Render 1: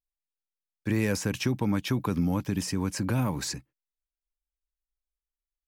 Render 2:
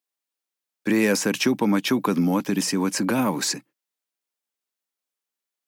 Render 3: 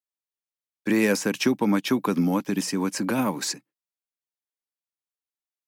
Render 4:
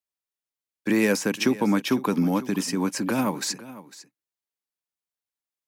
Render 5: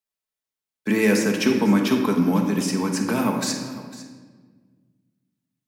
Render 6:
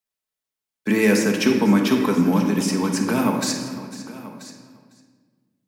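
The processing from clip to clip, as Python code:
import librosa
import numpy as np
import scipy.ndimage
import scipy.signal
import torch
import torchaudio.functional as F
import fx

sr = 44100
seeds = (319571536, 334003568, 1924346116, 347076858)

y1 = scipy.signal.sosfilt(scipy.signal.butter(4, 200.0, 'highpass', fs=sr, output='sos'), x)
y1 = y1 * 10.0 ** (8.5 / 20.0)
y2 = fx.upward_expand(y1, sr, threshold_db=-40.0, expansion=1.5)
y3 = y2 + 10.0 ** (-17.0 / 20.0) * np.pad(y2, (int(502 * sr / 1000.0), 0))[:len(y2)]
y4 = fx.room_shoebox(y3, sr, seeds[0], volume_m3=1500.0, walls='mixed', distance_m=1.5)
y5 = y4 + 10.0 ** (-16.5 / 20.0) * np.pad(y4, (int(984 * sr / 1000.0), 0))[:len(y4)]
y5 = y5 * 10.0 ** (1.5 / 20.0)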